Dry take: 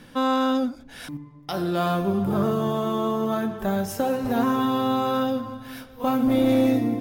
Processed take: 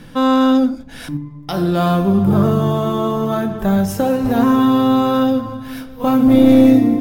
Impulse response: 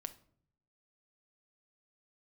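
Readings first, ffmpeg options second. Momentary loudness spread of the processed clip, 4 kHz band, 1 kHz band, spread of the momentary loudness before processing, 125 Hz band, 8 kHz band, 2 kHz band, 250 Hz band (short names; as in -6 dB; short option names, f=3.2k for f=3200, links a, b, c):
17 LU, +5.5 dB, +5.5 dB, 16 LU, +11.0 dB, +5.5 dB, +5.0 dB, +10.5 dB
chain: -filter_complex "[0:a]asplit=2[a][b];[1:a]atrim=start_sample=2205,lowshelf=f=270:g=10.5[c];[b][c]afir=irnorm=-1:irlink=0,volume=4dB[d];[a][d]amix=inputs=2:normalize=0,volume=-1dB"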